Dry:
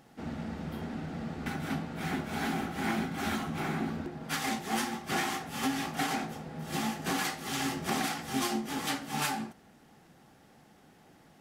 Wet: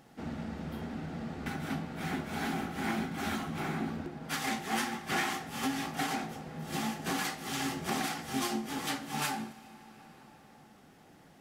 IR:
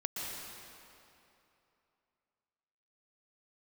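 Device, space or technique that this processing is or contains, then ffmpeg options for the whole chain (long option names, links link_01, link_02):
compressed reverb return: -filter_complex "[0:a]asettb=1/sr,asplit=3[link_01][link_02][link_03];[link_01]atrim=end=4.474[link_04];[link_02]atrim=start=4.47:end=5.33,asetpts=PTS-STARTPTS,afade=type=in:duration=0.004:curve=qsin,afade=type=out:start_time=0.856:duration=0.004:curve=qsin,equalizer=frequency=1900:width_type=o:width=1.6:gain=3.5[link_05];[link_03]atrim=start=5.326[link_06];[link_04][link_05]acrossfade=duration=0.004:curve1=hsin:curve2=qsin[link_07];[link_07][link_06]acrossfade=duration=0.004:curve1=qsin:curve2=hsin,asplit=2[link_08][link_09];[1:a]atrim=start_sample=2205[link_10];[link_09][link_10]afir=irnorm=-1:irlink=0,acompressor=threshold=-40dB:ratio=6,volume=-7.5dB[link_11];[link_08][link_11]amix=inputs=2:normalize=0,volume=-2.5dB"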